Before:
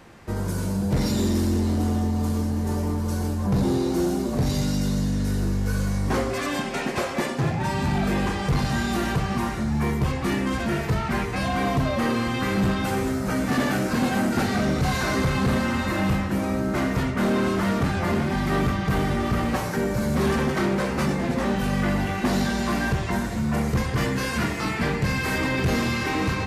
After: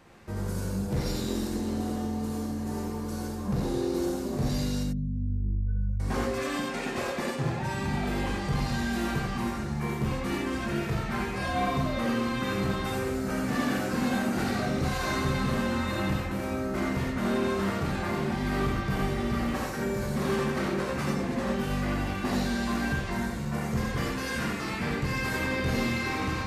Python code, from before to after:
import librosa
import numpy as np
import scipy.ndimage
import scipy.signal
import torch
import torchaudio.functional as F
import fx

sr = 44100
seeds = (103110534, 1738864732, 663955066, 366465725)

y = fx.spec_expand(x, sr, power=2.4, at=(4.83, 6.0))
y = fx.rev_gated(y, sr, seeds[0], gate_ms=110, shape='rising', drr_db=0.0)
y = y * 10.0 ** (-8.0 / 20.0)